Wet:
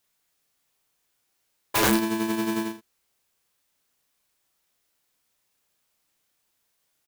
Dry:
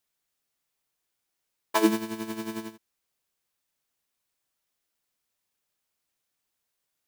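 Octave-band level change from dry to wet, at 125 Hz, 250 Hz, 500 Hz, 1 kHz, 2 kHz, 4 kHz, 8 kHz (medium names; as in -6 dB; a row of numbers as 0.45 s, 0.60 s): +8.0 dB, +3.0 dB, +2.0 dB, +3.5 dB, +7.0 dB, +6.5 dB, +8.5 dB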